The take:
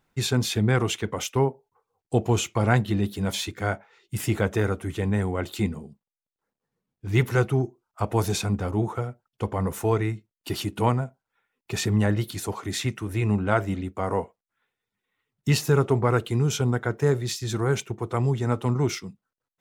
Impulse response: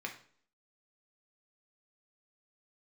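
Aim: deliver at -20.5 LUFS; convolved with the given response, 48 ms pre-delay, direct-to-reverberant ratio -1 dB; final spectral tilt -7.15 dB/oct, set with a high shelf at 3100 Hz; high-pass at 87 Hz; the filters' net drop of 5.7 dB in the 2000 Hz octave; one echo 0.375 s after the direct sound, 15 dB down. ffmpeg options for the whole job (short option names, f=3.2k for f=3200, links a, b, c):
-filter_complex "[0:a]highpass=87,equalizer=f=2k:t=o:g=-5.5,highshelf=f=3.1k:g=-7.5,aecho=1:1:375:0.178,asplit=2[a][b];[1:a]atrim=start_sample=2205,adelay=48[c];[b][c]afir=irnorm=-1:irlink=0,volume=-0.5dB[d];[a][d]amix=inputs=2:normalize=0,volume=3.5dB"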